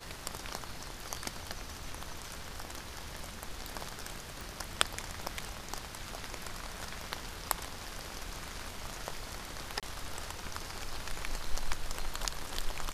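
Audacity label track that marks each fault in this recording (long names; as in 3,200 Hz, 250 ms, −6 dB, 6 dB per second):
4.410000	4.410000	click
9.800000	9.830000	drop-out 27 ms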